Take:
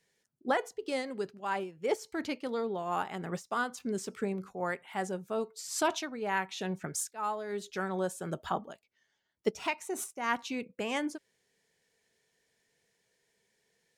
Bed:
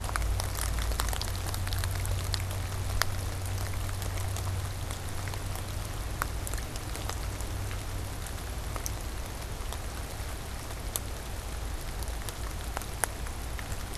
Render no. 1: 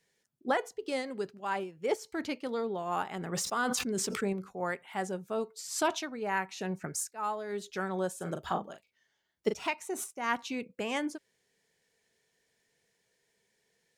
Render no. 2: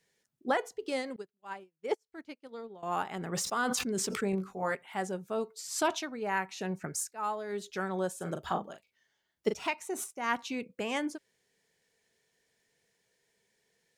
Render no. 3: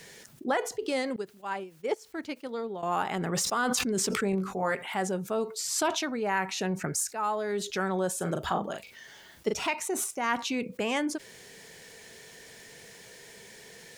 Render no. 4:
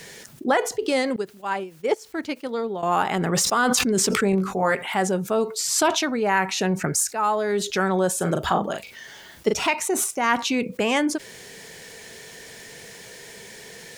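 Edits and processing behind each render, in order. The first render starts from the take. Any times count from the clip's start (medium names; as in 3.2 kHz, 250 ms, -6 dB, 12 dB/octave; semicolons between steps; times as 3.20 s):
3.08–4.33 s: decay stretcher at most 21 dB/s; 6.23–7.21 s: peaking EQ 3.4 kHz -10 dB 0.28 oct; 8.16–9.54 s: doubling 40 ms -7 dB
1.16–2.83 s: upward expansion 2.5:1, over -48 dBFS; 4.31–4.75 s: doubling 21 ms -3 dB
level flattener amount 50%
trim +7.5 dB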